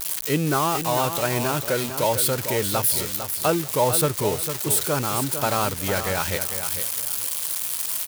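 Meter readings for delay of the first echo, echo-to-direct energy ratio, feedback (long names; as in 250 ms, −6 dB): 451 ms, −8.5 dB, 26%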